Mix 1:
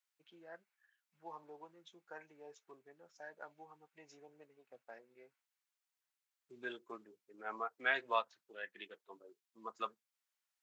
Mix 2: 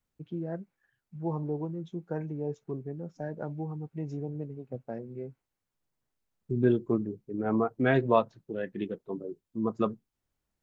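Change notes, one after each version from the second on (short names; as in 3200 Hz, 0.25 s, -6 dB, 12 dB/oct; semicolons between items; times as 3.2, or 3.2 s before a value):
master: remove HPF 1400 Hz 12 dB/oct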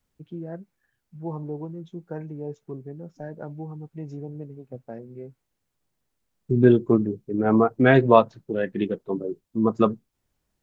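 second voice +8.5 dB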